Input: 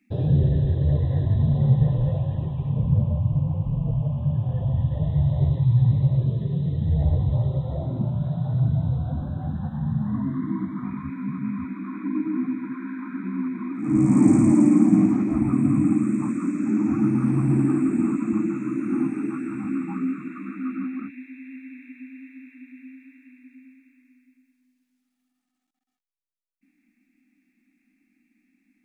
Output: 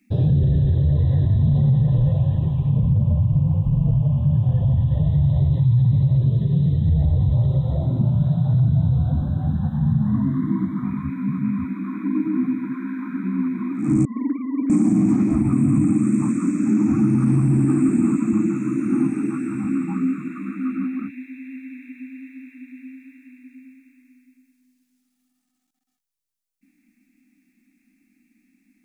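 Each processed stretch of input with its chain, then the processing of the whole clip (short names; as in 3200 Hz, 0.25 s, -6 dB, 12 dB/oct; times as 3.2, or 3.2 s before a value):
14.05–14.7 sine-wave speech + HPF 410 Hz 24 dB/oct + frequency shift -20 Hz
whole clip: tone controls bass +10 dB, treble +8 dB; limiter -9 dBFS; low shelf 200 Hz -5 dB; gain +1.5 dB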